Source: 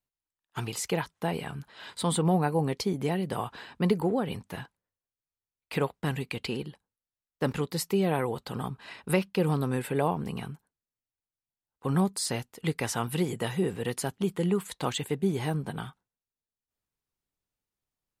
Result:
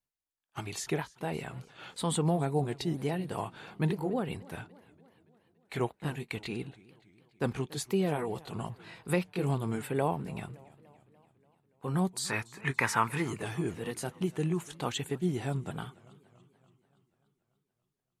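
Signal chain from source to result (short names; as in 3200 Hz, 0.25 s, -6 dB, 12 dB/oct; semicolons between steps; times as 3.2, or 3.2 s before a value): repeated pitch sweeps -2.5 st, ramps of 0.982 s; spectral gain 12.26–13.25, 840–2600 Hz +11 dB; warbling echo 0.288 s, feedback 59%, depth 154 cents, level -22 dB; gain -2.5 dB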